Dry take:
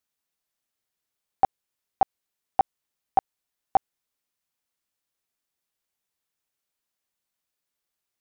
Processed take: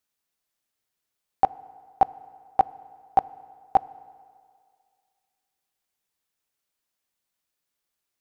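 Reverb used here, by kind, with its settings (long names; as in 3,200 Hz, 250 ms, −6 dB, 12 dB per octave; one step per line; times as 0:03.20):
feedback delay network reverb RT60 2.1 s, low-frequency decay 0.8×, high-frequency decay 0.8×, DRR 18.5 dB
level +1.5 dB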